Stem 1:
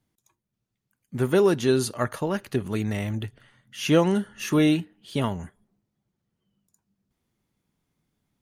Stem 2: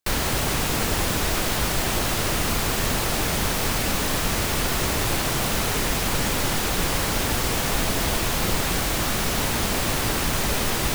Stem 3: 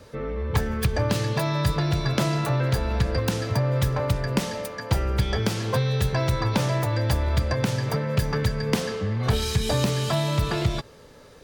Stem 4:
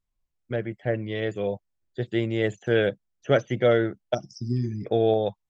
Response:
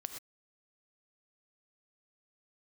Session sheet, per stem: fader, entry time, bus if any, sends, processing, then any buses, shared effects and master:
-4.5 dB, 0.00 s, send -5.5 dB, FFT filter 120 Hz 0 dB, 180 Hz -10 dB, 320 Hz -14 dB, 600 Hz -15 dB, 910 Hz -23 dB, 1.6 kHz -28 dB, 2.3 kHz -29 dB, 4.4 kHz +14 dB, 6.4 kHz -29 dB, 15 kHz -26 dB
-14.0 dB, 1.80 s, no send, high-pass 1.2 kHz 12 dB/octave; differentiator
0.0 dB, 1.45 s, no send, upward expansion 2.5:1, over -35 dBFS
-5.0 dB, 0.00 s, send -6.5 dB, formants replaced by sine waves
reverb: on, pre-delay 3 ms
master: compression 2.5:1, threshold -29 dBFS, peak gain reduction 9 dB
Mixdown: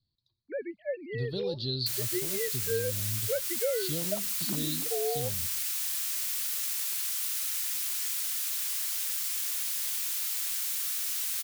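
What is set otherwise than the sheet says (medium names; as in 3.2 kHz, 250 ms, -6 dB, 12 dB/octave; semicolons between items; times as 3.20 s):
stem 2 -14.0 dB -> -3.0 dB; stem 3: muted; stem 4: send off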